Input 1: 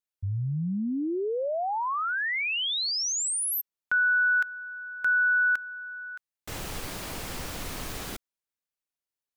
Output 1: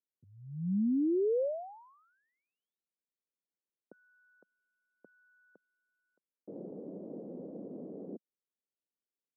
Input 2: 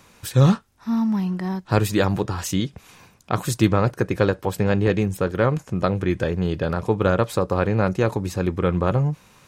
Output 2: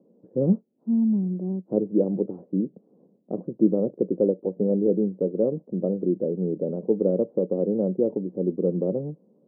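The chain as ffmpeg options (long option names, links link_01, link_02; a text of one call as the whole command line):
ffmpeg -i in.wav -af "asuperpass=centerf=320:order=8:qfactor=0.84" out.wav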